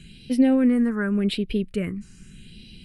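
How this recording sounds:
phaser sweep stages 4, 0.84 Hz, lowest notch 590–1,200 Hz

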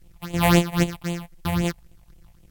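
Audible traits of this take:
a buzz of ramps at a fixed pitch in blocks of 256 samples
phaser sweep stages 6, 3.8 Hz, lowest notch 350–1,500 Hz
a quantiser's noise floor 12 bits, dither triangular
Ogg Vorbis

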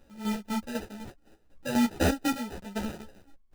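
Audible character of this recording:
aliases and images of a low sample rate 1,100 Hz, jitter 0%
chopped level 4 Hz, depth 65%, duty 40%
a shimmering, thickened sound

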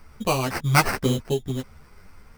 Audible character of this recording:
aliases and images of a low sample rate 3,500 Hz, jitter 0%
a shimmering, thickened sound

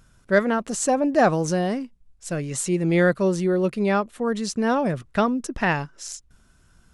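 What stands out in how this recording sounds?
background noise floor −58 dBFS
spectral slope −5.5 dB per octave

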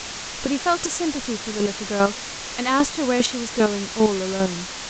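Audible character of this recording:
chopped level 2.5 Hz, depth 65%, duty 15%
a quantiser's noise floor 6 bits, dither triangular
mu-law

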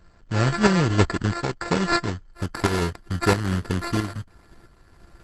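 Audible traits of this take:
a buzz of ramps at a fixed pitch in blocks of 32 samples
tremolo saw up 1.5 Hz, depth 60%
aliases and images of a low sample rate 3,100 Hz, jitter 0%
Opus

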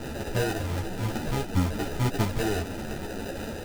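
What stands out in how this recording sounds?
a quantiser's noise floor 6 bits, dither triangular
phaser sweep stages 8, 1.5 Hz, lowest notch 160–1,200 Hz
aliases and images of a low sample rate 1,100 Hz, jitter 0%
a shimmering, thickened sound

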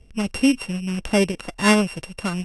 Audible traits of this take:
a buzz of ramps at a fixed pitch in blocks of 16 samples
AAC

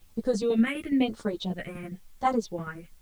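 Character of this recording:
tremolo saw down 12 Hz, depth 60%
phaser sweep stages 4, 1 Hz, lowest notch 780–2,500 Hz
a quantiser's noise floor 12 bits, dither triangular
a shimmering, thickened sound

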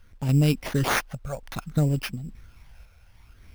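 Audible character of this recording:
phaser sweep stages 12, 0.6 Hz, lowest notch 320–1,500 Hz
a quantiser's noise floor 12 bits, dither none
sample-and-hold tremolo
aliases and images of a low sample rate 7,800 Hz, jitter 0%

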